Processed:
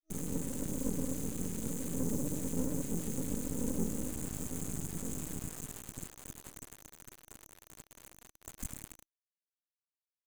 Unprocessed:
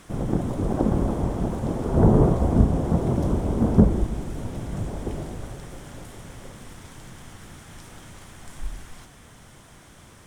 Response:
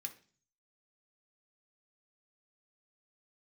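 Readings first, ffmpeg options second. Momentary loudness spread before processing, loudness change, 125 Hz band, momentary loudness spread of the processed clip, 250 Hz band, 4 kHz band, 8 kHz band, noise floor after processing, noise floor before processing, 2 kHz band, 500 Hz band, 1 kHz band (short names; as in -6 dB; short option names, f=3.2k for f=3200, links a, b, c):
23 LU, -15.0 dB, -18.0 dB, 18 LU, -13.5 dB, -7.0 dB, +6.0 dB, under -85 dBFS, -49 dBFS, -10.5 dB, -16.5 dB, -20.5 dB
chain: -filter_complex "[1:a]atrim=start_sample=2205,atrim=end_sample=4410[a];[0:a][a]afir=irnorm=-1:irlink=0,asplit=2[b][c];[c]aeval=exprs='0.106*(abs(mod(val(0)/0.106+3,4)-2)-1)':c=same,volume=-5dB[d];[b][d]amix=inputs=2:normalize=0,adynamicequalizer=threshold=0.00355:dfrequency=580:dqfactor=7.3:tfrequency=580:tqfactor=7.3:attack=5:release=100:ratio=0.375:range=2:mode=boostabove:tftype=bell,bandreject=f=46.24:t=h:w=4,bandreject=f=92.48:t=h:w=4,bandreject=f=138.72:t=h:w=4,asplit=5[e][f][g][h][i];[f]adelay=118,afreqshift=42,volume=-11dB[j];[g]adelay=236,afreqshift=84,volume=-18.3dB[k];[h]adelay=354,afreqshift=126,volume=-25.7dB[l];[i]adelay=472,afreqshift=168,volume=-33dB[m];[e][j][k][l][m]amix=inputs=5:normalize=0,acrossover=split=310|2200[n][o][p];[n]acompressor=threshold=-36dB:ratio=8[q];[q][o][p]amix=inputs=3:normalize=0,acrusher=bits=5:mix=0:aa=0.000001,equalizer=f=7k:t=o:w=0.77:g=3,afftfilt=real='re*(1-between(b*sr/4096,320,6100))':imag='im*(1-between(b*sr/4096,320,6100))':win_size=4096:overlap=0.75,aeval=exprs='max(val(0),0)':c=same,volume=1dB"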